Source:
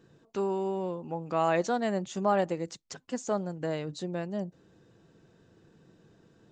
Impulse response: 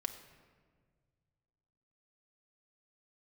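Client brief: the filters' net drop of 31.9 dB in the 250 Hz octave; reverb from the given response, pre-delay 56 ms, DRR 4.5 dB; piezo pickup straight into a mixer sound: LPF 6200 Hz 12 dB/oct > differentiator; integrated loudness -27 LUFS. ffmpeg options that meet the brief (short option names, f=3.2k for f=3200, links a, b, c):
-filter_complex "[0:a]equalizer=f=250:t=o:g=-5,asplit=2[a][b];[1:a]atrim=start_sample=2205,adelay=56[c];[b][c]afir=irnorm=-1:irlink=0,volume=-4.5dB[d];[a][d]amix=inputs=2:normalize=0,lowpass=6.2k,aderivative,volume=22dB"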